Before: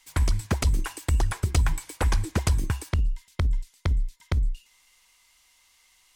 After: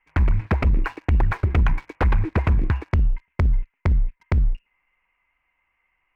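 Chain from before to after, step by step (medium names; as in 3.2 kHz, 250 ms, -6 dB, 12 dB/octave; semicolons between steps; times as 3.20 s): steep low-pass 2.6 kHz 72 dB/octave; waveshaping leveller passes 2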